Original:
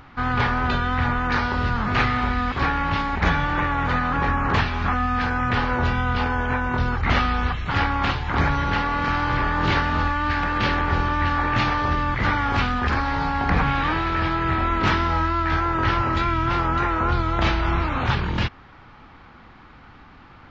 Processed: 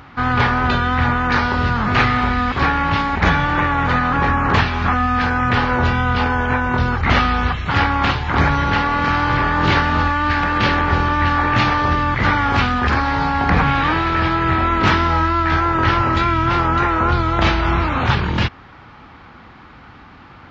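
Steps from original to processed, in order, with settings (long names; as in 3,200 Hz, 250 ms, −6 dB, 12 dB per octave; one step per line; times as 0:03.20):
high-pass filter 51 Hz
level +5.5 dB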